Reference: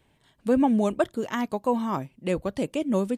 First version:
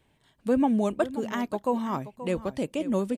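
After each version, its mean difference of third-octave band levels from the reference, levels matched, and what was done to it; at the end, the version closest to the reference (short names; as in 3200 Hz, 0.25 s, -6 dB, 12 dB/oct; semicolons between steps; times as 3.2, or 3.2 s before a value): 1.5 dB: de-esser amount 70%; echo 0.529 s -14 dB; gain -2 dB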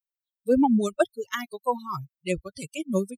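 9.5 dB: per-bin expansion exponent 3; high shelf 3100 Hz +7.5 dB; gain +4 dB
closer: first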